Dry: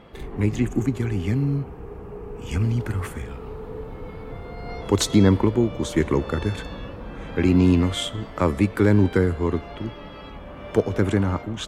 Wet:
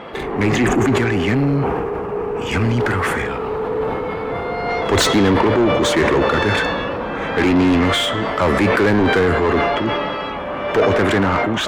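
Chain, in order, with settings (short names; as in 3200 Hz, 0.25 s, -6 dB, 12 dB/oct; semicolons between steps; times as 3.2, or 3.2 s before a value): dynamic EQ 1800 Hz, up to +4 dB, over -47 dBFS, Q 2.6; overdrive pedal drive 29 dB, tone 1800 Hz, clips at -4 dBFS; sustainer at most 21 dB/s; gain -2.5 dB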